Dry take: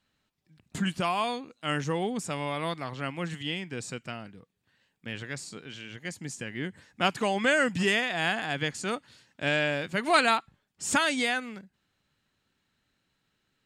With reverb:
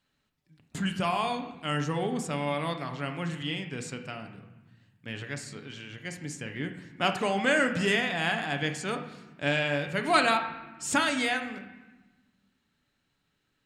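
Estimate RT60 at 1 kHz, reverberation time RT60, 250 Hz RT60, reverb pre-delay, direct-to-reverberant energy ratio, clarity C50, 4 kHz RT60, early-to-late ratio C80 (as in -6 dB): 1.2 s, 1.2 s, 1.9 s, 7 ms, 5.0 dB, 8.5 dB, 0.90 s, 11.5 dB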